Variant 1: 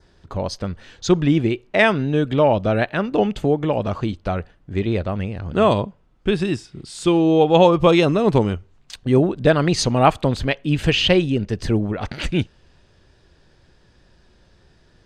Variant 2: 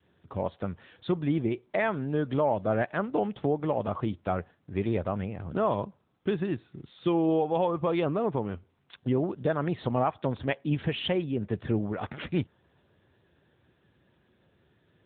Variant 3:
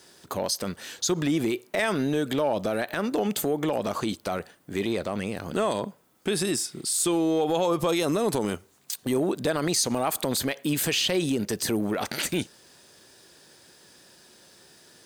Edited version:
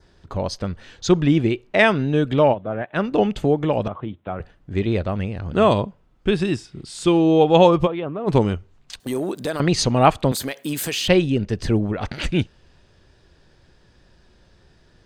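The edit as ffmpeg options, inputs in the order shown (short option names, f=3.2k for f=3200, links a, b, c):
-filter_complex "[1:a]asplit=3[a][b][c];[2:a]asplit=2[d][e];[0:a]asplit=6[f][g][h][i][j][k];[f]atrim=end=2.55[l];[a]atrim=start=2.51:end=2.97[m];[g]atrim=start=2.93:end=3.882[n];[b]atrim=start=3.878:end=4.402[o];[h]atrim=start=4.398:end=7.88[p];[c]atrim=start=7.84:end=8.3[q];[i]atrim=start=8.26:end=9.002[r];[d]atrim=start=8.998:end=9.602[s];[j]atrim=start=9.598:end=10.322[t];[e]atrim=start=10.318:end=11.082[u];[k]atrim=start=11.078[v];[l][m]acrossfade=d=0.04:c1=tri:c2=tri[w];[w][n]acrossfade=d=0.04:c1=tri:c2=tri[x];[x][o]acrossfade=d=0.004:c1=hsin:c2=hsin[y];[y][p]acrossfade=d=0.004:c1=hsin:c2=hsin[z];[z][q]acrossfade=d=0.04:c1=tri:c2=tri[aa];[aa][r]acrossfade=d=0.04:c1=tri:c2=tri[ab];[ab][s]acrossfade=d=0.004:c1=hsin:c2=hsin[ac];[ac][t]acrossfade=d=0.004:c1=hsin:c2=hsin[ad];[ad][u]acrossfade=d=0.004:c1=hsin:c2=hsin[ae];[ae][v]acrossfade=d=0.004:c1=hsin:c2=hsin"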